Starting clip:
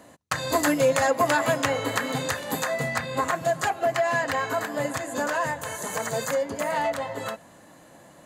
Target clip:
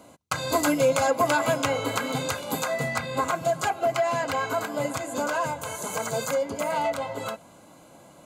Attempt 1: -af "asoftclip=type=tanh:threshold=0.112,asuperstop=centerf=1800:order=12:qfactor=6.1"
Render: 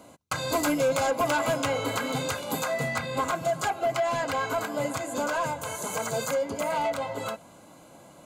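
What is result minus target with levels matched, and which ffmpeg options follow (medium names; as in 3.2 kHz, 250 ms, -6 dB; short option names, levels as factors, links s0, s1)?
saturation: distortion +17 dB
-af "asoftclip=type=tanh:threshold=0.422,asuperstop=centerf=1800:order=12:qfactor=6.1"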